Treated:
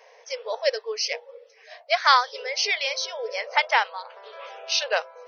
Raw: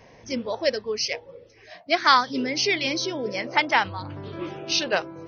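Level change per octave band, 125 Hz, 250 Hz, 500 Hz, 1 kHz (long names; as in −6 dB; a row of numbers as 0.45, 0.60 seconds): below −40 dB, below −30 dB, −1.0 dB, 0.0 dB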